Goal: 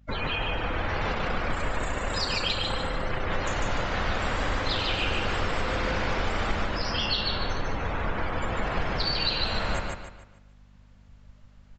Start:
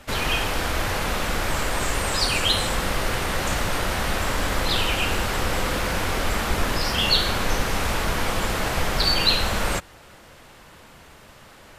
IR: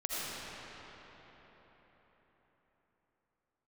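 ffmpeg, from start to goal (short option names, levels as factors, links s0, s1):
-filter_complex "[0:a]bandreject=f=60:t=h:w=6,bandreject=f=120:t=h:w=6,bandreject=f=180:t=h:w=6,bandreject=f=240:t=h:w=6,bandreject=f=300:t=h:w=6,bandreject=f=360:t=h:w=6,bandreject=f=420:t=h:w=6,acrusher=bits=3:mode=log:mix=0:aa=0.000001,asettb=1/sr,asplit=3[s0][s1][s2];[s0]atrim=end=1.144[s3];[s1]atrim=start=1.14:end=3.31,asetpts=PTS-STARTPTS,afade=t=in:d=0.004:c=qsin,afade=t=out:st=2.166:d=0.004:c=qsin,tremolo=f=30:d=0.571[s4];[s2]atrim=start=3.306[s5];[s3][s4]acrossfade=d=0.004:c1=hsin:c2=qsin[s6];[s6][s5]acrossfade=d=0.004:c1=qsin:c2=hsin,dynaudnorm=f=590:g=3:m=2.51,afftdn=nr=29:nf=-26,acompressor=threshold=0.0447:ratio=5,aecho=1:1:148|296|444|592|740:0.708|0.269|0.102|0.0388|0.0148,aeval=exprs='val(0)+0.00224*(sin(2*PI*50*n/s)+sin(2*PI*2*50*n/s)/2+sin(2*PI*3*50*n/s)/3+sin(2*PI*4*50*n/s)/4+sin(2*PI*5*50*n/s)/5)':c=same,aresample=16000,aresample=44100,adynamicequalizer=threshold=0.00631:dfrequency=5500:dqfactor=0.7:tfrequency=5500:tqfactor=0.7:attack=5:release=100:ratio=0.375:range=1.5:mode=boostabove:tftype=highshelf"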